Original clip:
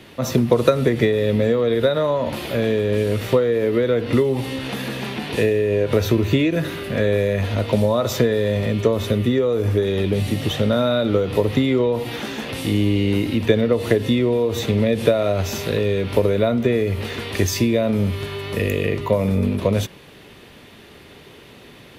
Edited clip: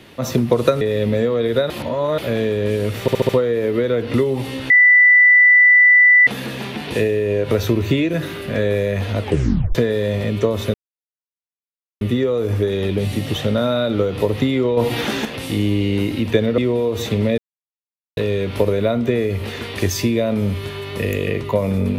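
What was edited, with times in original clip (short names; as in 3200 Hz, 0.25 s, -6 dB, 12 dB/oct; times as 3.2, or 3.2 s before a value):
0.81–1.08 cut
1.97–2.45 reverse
3.28 stutter 0.07 s, 5 plays
4.69 add tone 1980 Hz -7 dBFS 1.57 s
7.63 tape stop 0.54 s
9.16 insert silence 1.27 s
11.92–12.4 gain +6.5 dB
13.73–14.15 cut
14.95–15.74 mute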